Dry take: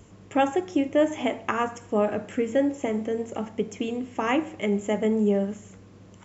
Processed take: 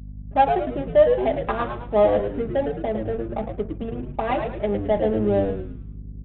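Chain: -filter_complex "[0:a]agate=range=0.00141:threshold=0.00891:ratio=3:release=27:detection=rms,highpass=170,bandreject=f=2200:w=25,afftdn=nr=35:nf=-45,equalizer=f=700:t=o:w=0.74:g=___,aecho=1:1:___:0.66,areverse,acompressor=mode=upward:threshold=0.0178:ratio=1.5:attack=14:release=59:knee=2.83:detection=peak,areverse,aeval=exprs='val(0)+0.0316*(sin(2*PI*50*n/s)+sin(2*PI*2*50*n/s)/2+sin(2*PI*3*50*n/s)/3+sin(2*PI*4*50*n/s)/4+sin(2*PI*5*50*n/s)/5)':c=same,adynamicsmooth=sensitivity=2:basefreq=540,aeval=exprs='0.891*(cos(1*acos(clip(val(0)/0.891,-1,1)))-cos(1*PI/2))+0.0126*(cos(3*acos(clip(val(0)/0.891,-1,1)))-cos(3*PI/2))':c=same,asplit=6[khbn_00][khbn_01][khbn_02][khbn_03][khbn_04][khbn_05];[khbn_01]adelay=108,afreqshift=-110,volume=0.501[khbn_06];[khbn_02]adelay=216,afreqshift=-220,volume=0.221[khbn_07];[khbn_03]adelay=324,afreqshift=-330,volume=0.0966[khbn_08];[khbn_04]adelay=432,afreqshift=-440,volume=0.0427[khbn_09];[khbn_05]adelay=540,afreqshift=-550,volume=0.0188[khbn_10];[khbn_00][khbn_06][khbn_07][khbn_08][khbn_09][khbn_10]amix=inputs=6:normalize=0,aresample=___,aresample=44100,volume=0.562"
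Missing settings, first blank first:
12, 4.9, 8000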